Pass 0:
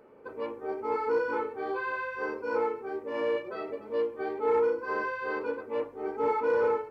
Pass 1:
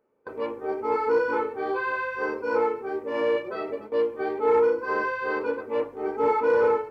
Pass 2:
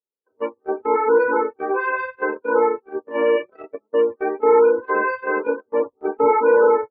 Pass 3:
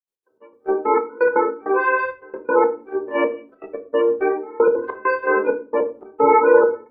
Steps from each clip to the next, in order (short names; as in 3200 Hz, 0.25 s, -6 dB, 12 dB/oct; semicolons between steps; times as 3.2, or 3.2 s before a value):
gate with hold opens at -33 dBFS; gain +5 dB
loudest bins only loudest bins 32; gate -28 dBFS, range -37 dB; gain +6.5 dB
step gate ".x.xx..xxxxxx.." 199 bpm -24 dB; shoebox room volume 280 m³, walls furnished, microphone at 0.9 m; gain +2.5 dB